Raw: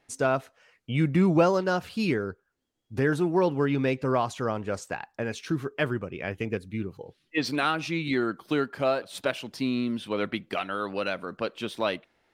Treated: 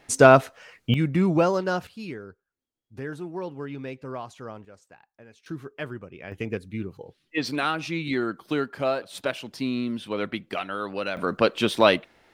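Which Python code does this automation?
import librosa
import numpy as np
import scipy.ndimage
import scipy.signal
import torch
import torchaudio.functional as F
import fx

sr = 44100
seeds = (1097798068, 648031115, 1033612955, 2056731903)

y = fx.gain(x, sr, db=fx.steps((0.0, 11.5), (0.94, 0.0), (1.87, -10.0), (4.65, -19.0), (5.46, -7.0), (6.32, 0.0), (11.17, 10.0)))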